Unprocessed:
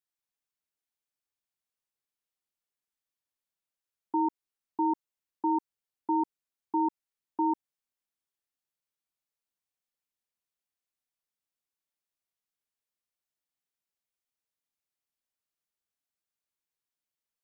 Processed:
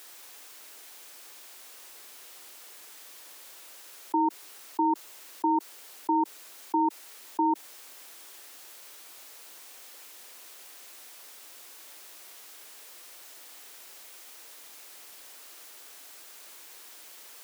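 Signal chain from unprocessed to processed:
high-pass filter 300 Hz 24 dB per octave
envelope flattener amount 70%
level +3 dB

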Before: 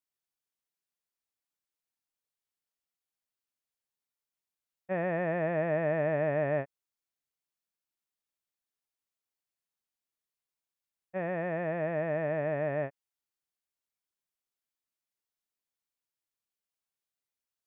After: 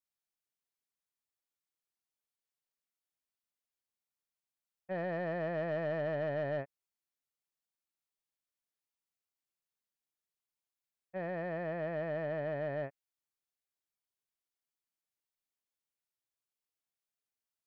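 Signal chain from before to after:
soft clipping −24 dBFS, distortion −18 dB
level −4 dB

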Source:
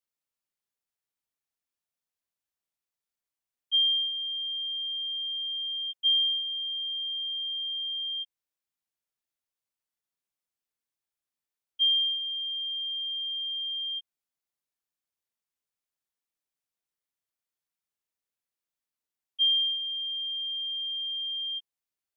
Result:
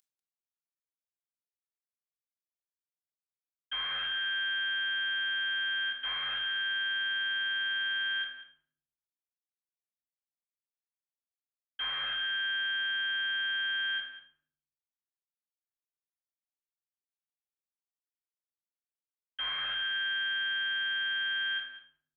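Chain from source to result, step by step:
variable-slope delta modulation 16 kbit/s
spectral tilt +6 dB per octave
brickwall limiter −31 dBFS, peak gain reduction 6 dB
slap from a distant wall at 33 metres, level −13 dB
convolution reverb RT60 0.60 s, pre-delay 4 ms, DRR 1 dB

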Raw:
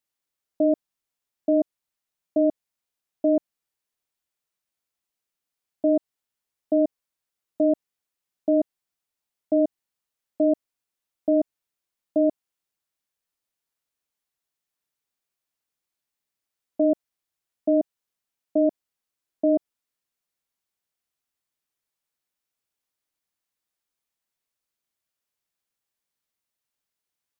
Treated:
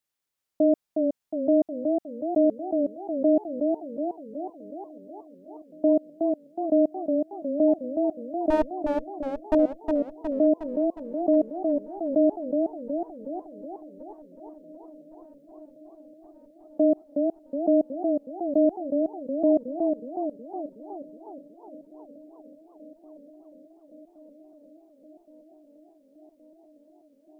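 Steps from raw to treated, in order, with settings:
0:08.50–0:09.55: lower of the sound and its delayed copy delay 4.5 ms
on a send: delay with a low-pass on its return 1,120 ms, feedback 80%, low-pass 770 Hz, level −23 dB
on the sum: feedback echo with a swinging delay time 366 ms, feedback 58%, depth 118 cents, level −4.5 dB

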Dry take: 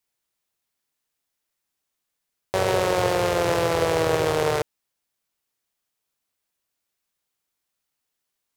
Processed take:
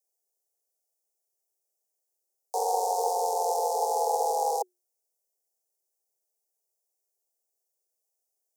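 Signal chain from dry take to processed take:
inverse Chebyshev band-stop filter 1,100–2,200 Hz, stop band 70 dB
frequency shifter +360 Hz

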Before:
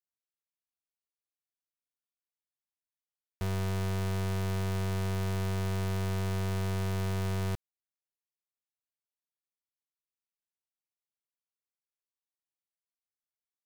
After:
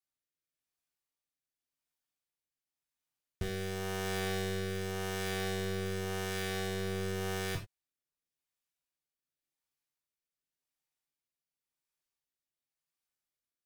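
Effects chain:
rotating-speaker cabinet horn 0.9 Hz
reverb whose tail is shaped and stops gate 120 ms falling, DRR 0 dB
level +2.5 dB

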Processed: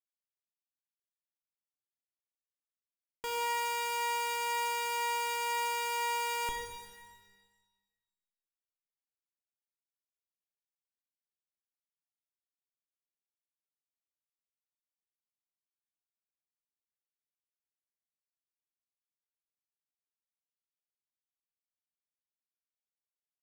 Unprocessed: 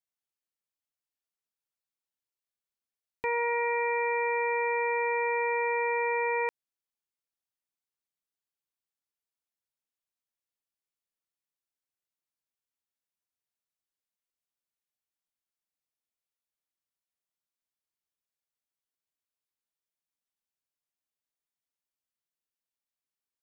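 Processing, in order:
comparator with hysteresis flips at −42.5 dBFS
reverb with rising layers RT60 1.3 s, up +12 semitones, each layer −8 dB, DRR 3 dB
level +1 dB

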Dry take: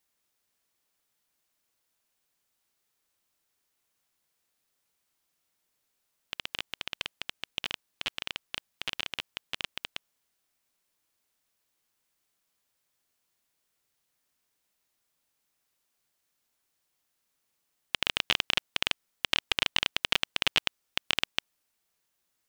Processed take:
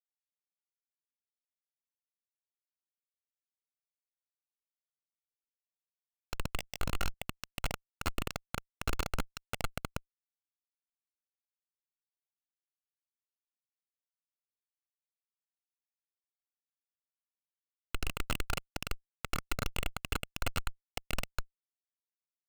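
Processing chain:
samples in bit-reversed order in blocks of 128 samples
comparator with hysteresis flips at −20.5 dBFS
0:06.61–0:07.14: double-tracking delay 20 ms −2.5 dB
level +10 dB

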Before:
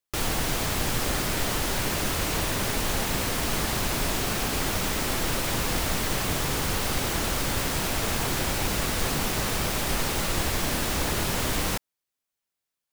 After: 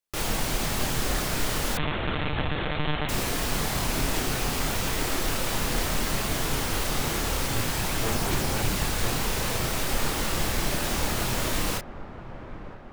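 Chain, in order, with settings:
multi-voice chorus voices 6, 1 Hz, delay 29 ms, depth 4.6 ms
on a send: delay with a low-pass on its return 970 ms, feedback 63%, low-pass 1,400 Hz, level −13 dB
0:01.77–0:03.09: on the sum: one-pitch LPC vocoder at 8 kHz 150 Hz
level +2 dB

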